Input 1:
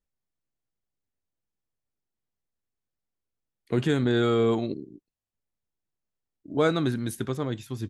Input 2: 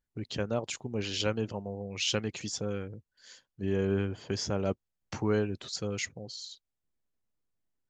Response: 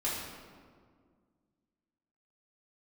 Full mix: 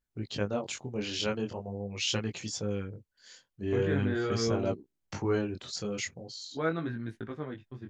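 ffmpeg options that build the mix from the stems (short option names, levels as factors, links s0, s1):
-filter_complex "[0:a]agate=range=0.0224:threshold=0.02:ratio=16:detection=peak,lowpass=2500,equalizer=f=1800:t=o:w=0.77:g=6,volume=0.501[s0];[1:a]volume=1.33[s1];[s0][s1]amix=inputs=2:normalize=0,flanger=delay=17.5:depth=6.6:speed=0.43"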